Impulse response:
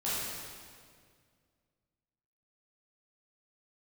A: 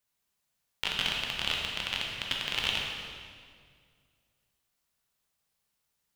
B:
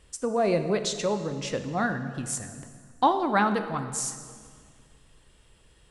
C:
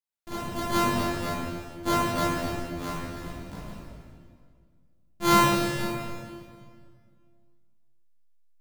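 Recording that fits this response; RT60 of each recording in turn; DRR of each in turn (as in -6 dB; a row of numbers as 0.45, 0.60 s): C; 2.0, 2.0, 2.0 s; -1.5, 8.5, -10.5 dB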